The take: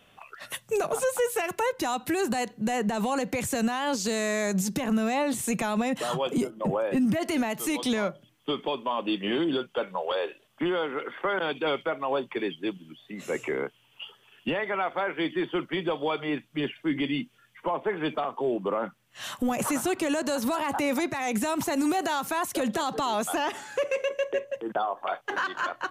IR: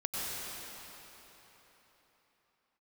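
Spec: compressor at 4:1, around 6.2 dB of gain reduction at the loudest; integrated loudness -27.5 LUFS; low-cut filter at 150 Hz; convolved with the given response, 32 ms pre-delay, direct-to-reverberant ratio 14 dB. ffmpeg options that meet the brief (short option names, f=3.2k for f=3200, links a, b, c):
-filter_complex "[0:a]highpass=150,acompressor=threshold=-30dB:ratio=4,asplit=2[a][b];[1:a]atrim=start_sample=2205,adelay=32[c];[b][c]afir=irnorm=-1:irlink=0,volume=-20dB[d];[a][d]amix=inputs=2:normalize=0,volume=6.5dB"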